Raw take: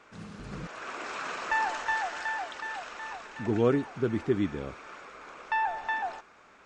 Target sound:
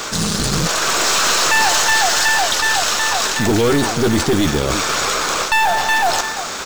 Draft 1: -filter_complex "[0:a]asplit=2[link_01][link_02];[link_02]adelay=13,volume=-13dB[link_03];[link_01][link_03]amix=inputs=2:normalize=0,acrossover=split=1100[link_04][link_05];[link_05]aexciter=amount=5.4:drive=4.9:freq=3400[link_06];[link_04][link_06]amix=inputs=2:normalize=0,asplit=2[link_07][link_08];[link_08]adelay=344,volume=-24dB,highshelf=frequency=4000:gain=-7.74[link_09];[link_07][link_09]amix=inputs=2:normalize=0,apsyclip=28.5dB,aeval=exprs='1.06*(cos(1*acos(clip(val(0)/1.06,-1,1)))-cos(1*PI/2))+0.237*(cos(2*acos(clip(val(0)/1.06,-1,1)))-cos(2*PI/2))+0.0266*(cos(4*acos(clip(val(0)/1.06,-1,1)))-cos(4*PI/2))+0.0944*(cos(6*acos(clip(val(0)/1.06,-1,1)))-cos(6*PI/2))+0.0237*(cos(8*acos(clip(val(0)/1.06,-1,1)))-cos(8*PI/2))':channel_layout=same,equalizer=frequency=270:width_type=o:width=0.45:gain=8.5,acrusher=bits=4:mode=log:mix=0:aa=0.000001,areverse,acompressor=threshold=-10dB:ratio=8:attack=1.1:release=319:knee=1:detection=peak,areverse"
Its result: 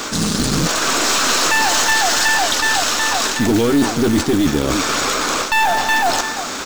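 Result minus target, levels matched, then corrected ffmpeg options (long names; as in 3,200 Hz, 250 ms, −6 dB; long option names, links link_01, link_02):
250 Hz band +3.0 dB
-filter_complex "[0:a]asplit=2[link_01][link_02];[link_02]adelay=13,volume=-13dB[link_03];[link_01][link_03]amix=inputs=2:normalize=0,acrossover=split=1100[link_04][link_05];[link_05]aexciter=amount=5.4:drive=4.9:freq=3400[link_06];[link_04][link_06]amix=inputs=2:normalize=0,asplit=2[link_07][link_08];[link_08]adelay=344,volume=-24dB,highshelf=frequency=4000:gain=-7.74[link_09];[link_07][link_09]amix=inputs=2:normalize=0,apsyclip=28.5dB,aeval=exprs='1.06*(cos(1*acos(clip(val(0)/1.06,-1,1)))-cos(1*PI/2))+0.237*(cos(2*acos(clip(val(0)/1.06,-1,1)))-cos(2*PI/2))+0.0266*(cos(4*acos(clip(val(0)/1.06,-1,1)))-cos(4*PI/2))+0.0944*(cos(6*acos(clip(val(0)/1.06,-1,1)))-cos(6*PI/2))+0.0237*(cos(8*acos(clip(val(0)/1.06,-1,1)))-cos(8*PI/2))':channel_layout=same,equalizer=frequency=270:width_type=o:width=0.45:gain=-2,acrusher=bits=4:mode=log:mix=0:aa=0.000001,areverse,acompressor=threshold=-10dB:ratio=8:attack=1.1:release=319:knee=1:detection=peak,areverse"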